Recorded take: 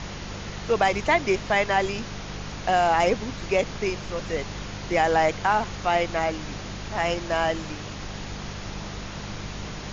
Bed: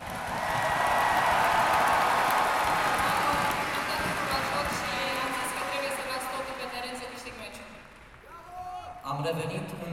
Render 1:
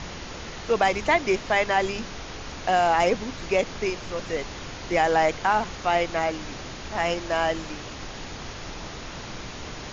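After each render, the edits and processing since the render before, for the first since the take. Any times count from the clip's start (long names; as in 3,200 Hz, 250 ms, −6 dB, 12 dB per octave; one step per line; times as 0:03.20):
hum removal 50 Hz, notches 4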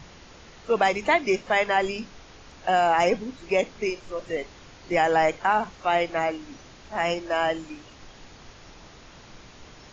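noise reduction from a noise print 11 dB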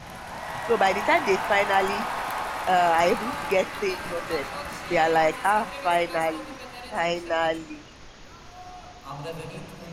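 mix in bed −5 dB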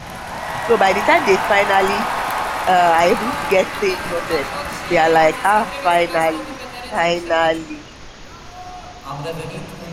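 level +8.5 dB
brickwall limiter −3 dBFS, peak gain reduction 3 dB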